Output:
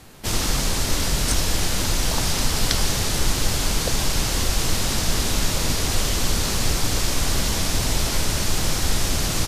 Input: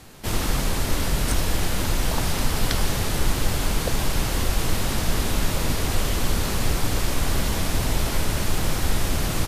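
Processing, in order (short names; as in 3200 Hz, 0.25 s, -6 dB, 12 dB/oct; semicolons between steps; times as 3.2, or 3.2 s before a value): dynamic EQ 5800 Hz, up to +8 dB, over -47 dBFS, Q 0.76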